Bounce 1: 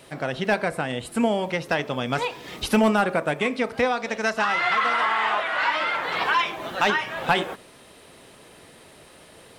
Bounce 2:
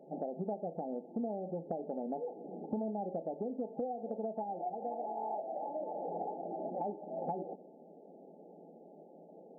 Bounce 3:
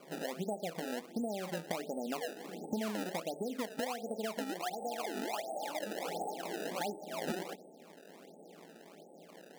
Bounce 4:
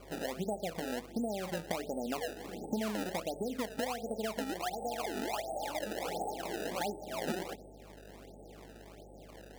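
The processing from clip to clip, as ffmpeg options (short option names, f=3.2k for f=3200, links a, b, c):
-af "afftfilt=real='re*between(b*sr/4096,160,880)':imag='im*between(b*sr/4096,160,880)':win_size=4096:overlap=0.75,acompressor=threshold=-32dB:ratio=6,volume=-3dB"
-af "acrusher=samples=23:mix=1:aa=0.000001:lfo=1:lforange=36.8:lforate=1.4"
-af "aeval=exprs='val(0)+0.00141*(sin(2*PI*50*n/s)+sin(2*PI*2*50*n/s)/2+sin(2*PI*3*50*n/s)/3+sin(2*PI*4*50*n/s)/4+sin(2*PI*5*50*n/s)/5)':c=same,volume=1.5dB"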